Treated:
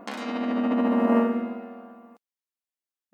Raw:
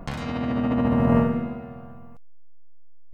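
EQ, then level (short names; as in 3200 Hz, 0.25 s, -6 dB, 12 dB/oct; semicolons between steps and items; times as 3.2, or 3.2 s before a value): brick-wall FIR high-pass 200 Hz; 0.0 dB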